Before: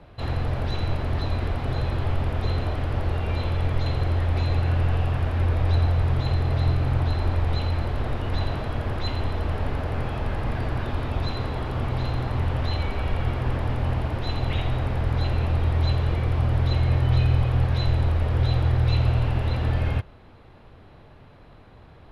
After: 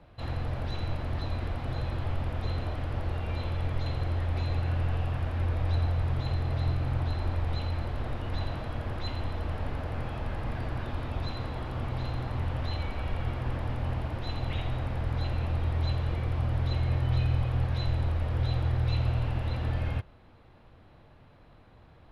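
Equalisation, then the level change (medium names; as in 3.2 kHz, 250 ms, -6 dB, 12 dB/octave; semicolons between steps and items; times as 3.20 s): band-stop 410 Hz, Q 12; -6.5 dB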